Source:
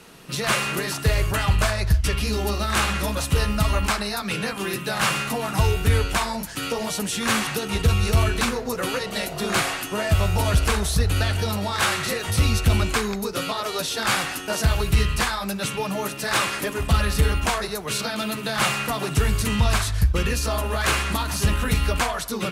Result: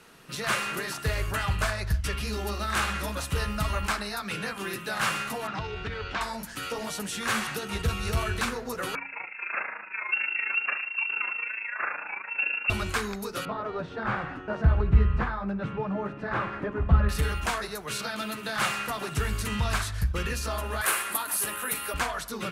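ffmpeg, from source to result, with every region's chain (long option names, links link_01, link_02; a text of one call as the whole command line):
ffmpeg -i in.wav -filter_complex "[0:a]asettb=1/sr,asplit=3[link_01][link_02][link_03];[link_01]atrim=end=5.474[link_04];[link_02]atrim=start=5.47:end=6.21,asetpts=PTS-STARTPTS,afade=type=in:duration=0.004:curve=qsin,afade=type=out:start_time=0.736:duration=0.004:curve=qsin,lowpass=frequency=4800:width=0.5412,lowpass=frequency=4800:width=1.3066,acompressor=threshold=-19dB:ratio=6:attack=3.2:release=140:knee=1:detection=peak,equalizer=frequency=65:width=0.93:gain=-6.5[link_05];[link_03]atrim=start=6.206[link_06];[link_04][link_05]acrossfade=duration=0.004:curve1=hsin:curve2=qsin[link_07];[link_07][link_06]acrossfade=duration=0.004:curve1=qsin:curve2=hsin,asettb=1/sr,asplit=3[link_08][link_09][link_10];[link_08]atrim=end=8.954[link_11];[link_09]atrim=start=8.95:end=12.7,asetpts=PTS-STARTPTS,afade=type=in:duration=0.004:curve=qsin,afade=type=out:start_time=3.746:duration=0.004:curve=qsin,lowpass=frequency=2400:width_type=q:width=0.5098,lowpass=frequency=2400:width_type=q:width=0.6013,lowpass=frequency=2400:width_type=q:width=0.9,lowpass=frequency=2400:width_type=q:width=2.563,afreqshift=-2800,highpass=frequency=340:poles=1,tremolo=f=27:d=0.667[link_12];[link_10]atrim=start=12.696[link_13];[link_11][link_12]acrossfade=duration=0.004:curve1=hsin:curve2=qsin[link_14];[link_14][link_13]acrossfade=duration=0.004:curve1=qsin:curve2=hsin,asettb=1/sr,asplit=3[link_15][link_16][link_17];[link_15]atrim=end=13.454[link_18];[link_16]atrim=start=13.45:end=17.09,asetpts=PTS-STARTPTS,afade=type=in:duration=0.004:curve=qsin,afade=type=out:start_time=3.636:duration=0.004:curve=qsin,lowpass=1400,lowshelf=frequency=350:gain=8.5[link_19];[link_17]atrim=start=17.086[link_20];[link_18][link_19]acrossfade=duration=0.004:curve1=hsin:curve2=qsin[link_21];[link_21][link_20]acrossfade=duration=0.004:curve1=qsin:curve2=hsin,asettb=1/sr,asplit=3[link_22][link_23][link_24];[link_22]atrim=end=20.814[link_25];[link_23]atrim=start=20.81:end=21.94,asetpts=PTS-STARTPTS,afade=type=in:duration=0.004:curve=qsin,afade=type=out:start_time=1.126:duration=0.004:curve=qsin,highpass=360,highshelf=frequency=8000:width_type=q:width=1.5:gain=11.5[link_26];[link_24]atrim=start=21.936[link_27];[link_25][link_26]acrossfade=duration=0.004:curve1=hsin:curve2=qsin[link_28];[link_28][link_27]acrossfade=duration=0.004:curve1=qsin:curve2=hsin,equalizer=frequency=1500:width=1.5:gain=5,bandreject=frequency=45.91:width_type=h:width=4,bandreject=frequency=91.82:width_type=h:width=4,bandreject=frequency=137.73:width_type=h:width=4,bandreject=frequency=183.64:width_type=h:width=4,bandreject=frequency=229.55:width_type=h:width=4,bandreject=frequency=275.46:width_type=h:width=4,bandreject=frequency=321.37:width_type=h:width=4,volume=-7.5dB" out.wav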